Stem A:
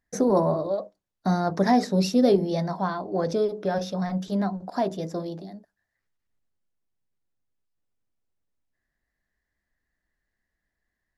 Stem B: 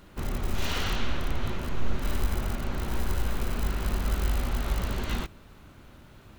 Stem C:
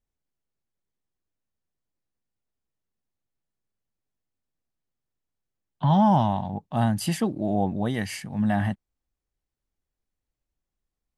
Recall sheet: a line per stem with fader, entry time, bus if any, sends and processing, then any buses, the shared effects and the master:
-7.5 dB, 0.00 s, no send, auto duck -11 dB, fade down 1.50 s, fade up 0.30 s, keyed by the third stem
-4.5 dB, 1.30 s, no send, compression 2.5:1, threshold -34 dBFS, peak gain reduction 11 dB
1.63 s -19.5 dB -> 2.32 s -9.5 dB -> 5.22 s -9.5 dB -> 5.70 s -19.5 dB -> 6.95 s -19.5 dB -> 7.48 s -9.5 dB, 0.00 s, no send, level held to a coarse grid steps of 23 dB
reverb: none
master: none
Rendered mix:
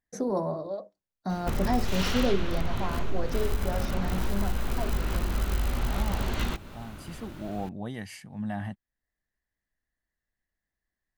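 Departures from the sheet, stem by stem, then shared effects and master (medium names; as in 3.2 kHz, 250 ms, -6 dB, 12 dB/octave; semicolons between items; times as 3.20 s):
stem B -4.5 dB -> +7.0 dB; stem C: missing level held to a coarse grid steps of 23 dB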